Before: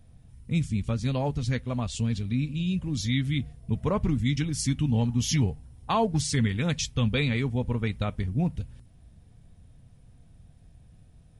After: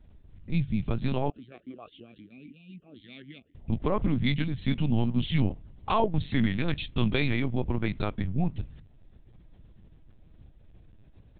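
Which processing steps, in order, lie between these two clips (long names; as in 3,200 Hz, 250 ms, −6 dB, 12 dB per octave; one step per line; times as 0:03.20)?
linear-prediction vocoder at 8 kHz pitch kept
0:01.30–0:03.55: formant filter swept between two vowels a-i 3.8 Hz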